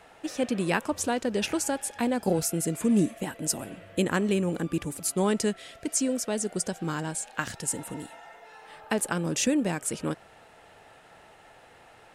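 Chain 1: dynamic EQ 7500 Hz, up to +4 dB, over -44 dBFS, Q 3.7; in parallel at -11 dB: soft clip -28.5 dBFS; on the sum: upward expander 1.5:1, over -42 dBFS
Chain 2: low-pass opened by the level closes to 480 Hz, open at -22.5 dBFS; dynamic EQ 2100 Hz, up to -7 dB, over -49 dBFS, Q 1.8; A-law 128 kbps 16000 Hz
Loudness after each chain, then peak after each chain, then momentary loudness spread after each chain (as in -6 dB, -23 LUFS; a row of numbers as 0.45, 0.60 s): -29.5, -29.5 LUFS; -12.0, -14.0 dBFS; 10, 11 LU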